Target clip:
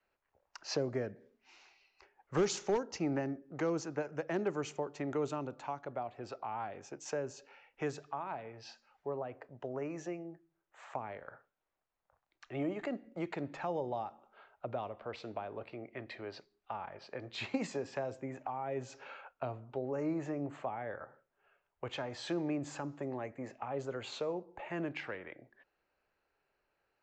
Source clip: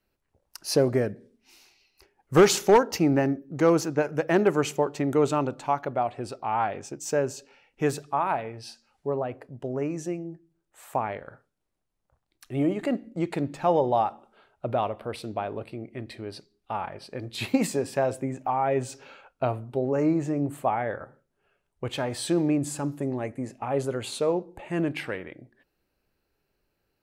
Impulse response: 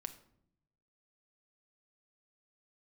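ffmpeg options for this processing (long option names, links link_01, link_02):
-filter_complex "[0:a]acrossover=split=520 2600:gain=0.178 1 0.224[link_01][link_02][link_03];[link_01][link_02][link_03]amix=inputs=3:normalize=0,acrossover=split=340|4400[link_04][link_05][link_06];[link_05]acompressor=threshold=-43dB:ratio=5[link_07];[link_04][link_07][link_06]amix=inputs=3:normalize=0,aresample=16000,aresample=44100,volume=2dB"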